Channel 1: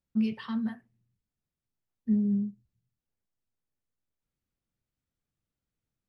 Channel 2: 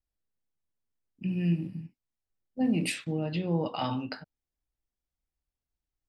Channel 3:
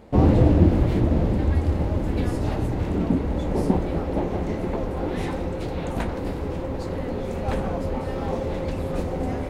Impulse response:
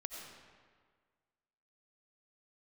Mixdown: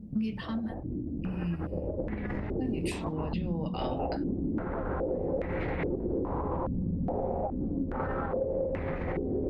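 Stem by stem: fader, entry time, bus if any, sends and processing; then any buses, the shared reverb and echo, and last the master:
+1.5 dB, 0.00 s, no send, auto duck -16 dB, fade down 0.80 s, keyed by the second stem
-4.5 dB, 0.00 s, no send, dry
-5.5 dB, 0.00 s, no send, negative-ratio compressor -29 dBFS, ratio -1; stepped low-pass 2.4 Hz 200–2000 Hz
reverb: off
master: compressor, threshold -27 dBFS, peak gain reduction 7.5 dB

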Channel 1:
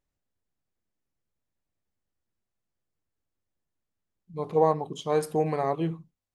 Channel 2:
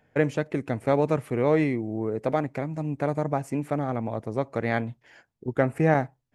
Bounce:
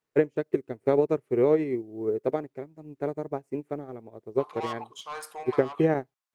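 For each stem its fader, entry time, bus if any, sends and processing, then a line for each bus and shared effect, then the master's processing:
-1.5 dB, 0.00 s, no send, resonant high-pass 1100 Hz, resonance Q 1.9; soft clip -30.5 dBFS, distortion -6 dB
+2.5 dB, 0.00 s, no send, bell 390 Hz +14.5 dB 0.64 oct; bit-crush 10-bit; upward expander 2.5:1, over -31 dBFS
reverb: off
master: compressor 6:1, threshold -18 dBFS, peak gain reduction 10 dB

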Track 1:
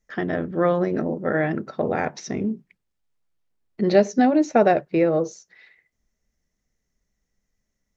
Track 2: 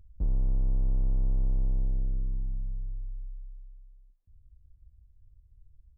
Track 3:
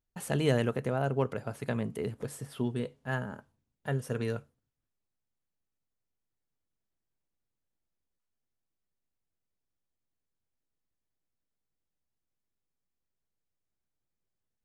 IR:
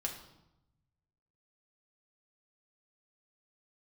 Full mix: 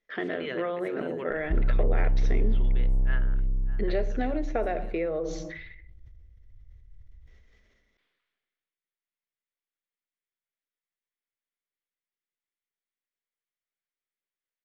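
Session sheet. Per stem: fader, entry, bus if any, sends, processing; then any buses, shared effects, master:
-4.0 dB, 0.00 s, bus A, send -19 dB, no echo send, dry
+2.5 dB, 1.30 s, no bus, send -12.5 dB, no echo send, tone controls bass -5 dB, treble -15 dB
-12.5 dB, 0.00 s, bus A, no send, echo send -16 dB, bell 1800 Hz +11 dB 2 oct
bus A: 0.0 dB, speaker cabinet 300–4500 Hz, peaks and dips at 420 Hz +4 dB, 830 Hz -6 dB, 2100 Hz +6 dB, 3400 Hz +7 dB; compressor 6:1, threshold -29 dBFS, peak gain reduction 14 dB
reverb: on, RT60 0.90 s, pre-delay 4 ms
echo: echo 0.6 s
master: low shelf 200 Hz +4 dB; sustainer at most 33 dB/s

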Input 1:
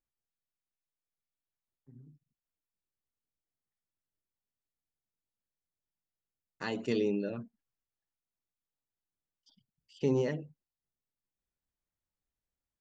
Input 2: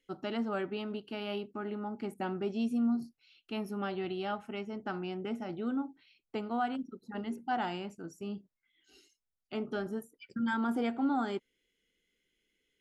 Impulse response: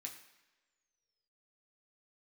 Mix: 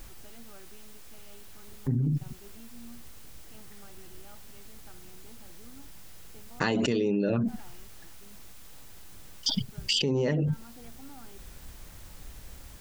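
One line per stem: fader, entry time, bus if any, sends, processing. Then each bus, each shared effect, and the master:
+2.0 dB, 0.00 s, no send, low shelf 110 Hz +8.5 dB; fast leveller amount 100%
-19.5 dB, 0.00 s, no send, dry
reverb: off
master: compressor 1.5:1, threshold -29 dBFS, peak gain reduction 4.5 dB

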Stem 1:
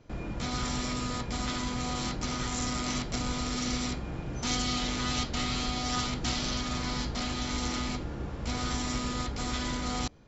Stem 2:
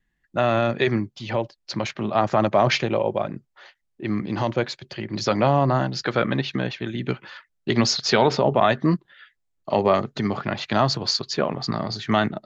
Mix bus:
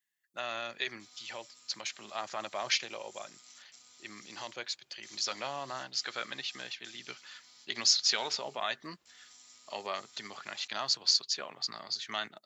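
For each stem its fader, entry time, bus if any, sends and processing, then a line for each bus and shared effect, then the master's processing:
-8.5 dB, 0.60 s, no send, auto duck -7 dB, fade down 1.30 s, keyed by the second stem
+1.0 dB, 0.00 s, no send, dry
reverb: off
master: differentiator

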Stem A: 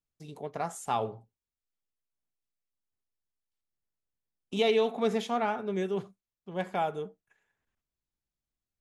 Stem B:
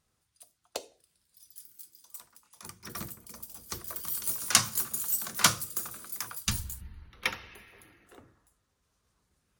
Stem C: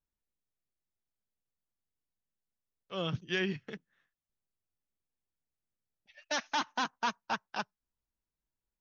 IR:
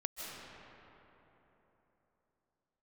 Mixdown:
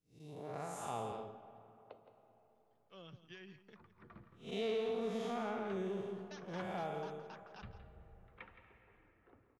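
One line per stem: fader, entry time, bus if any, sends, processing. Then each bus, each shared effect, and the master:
-5.0 dB, 0.00 s, send -11.5 dB, echo send -5.5 dB, time blur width 0.18 s; notch 870 Hz, Q 21; soft clip -20 dBFS, distortion -24 dB
-13.5 dB, 1.15 s, send -6.5 dB, echo send -9 dB, compressor 1.5:1, threshold -45 dBFS, peak gain reduction 10.5 dB; Gaussian blur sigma 3.8 samples
-17.0 dB, 0.00 s, no send, echo send -14 dB, compressor, threshold -33 dBFS, peak gain reduction 7 dB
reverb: on, RT60 3.6 s, pre-delay 0.115 s
echo: echo 0.168 s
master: compressor 2:1, threshold -38 dBFS, peak gain reduction 6 dB

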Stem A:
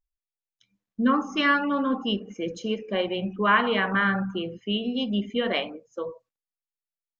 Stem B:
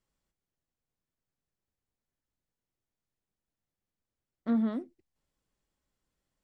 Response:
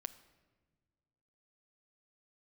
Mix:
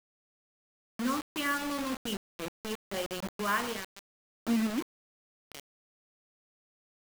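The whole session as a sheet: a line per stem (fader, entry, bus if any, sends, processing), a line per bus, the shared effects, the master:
3.65 s -10 dB -> 4.22 s -17 dB, 0.00 s, no send, auto duck -19 dB, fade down 0.85 s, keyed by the second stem
-3.0 dB, 0.00 s, no send, bell 310 Hz +13 dB 0.31 oct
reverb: off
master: requantised 6-bit, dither none

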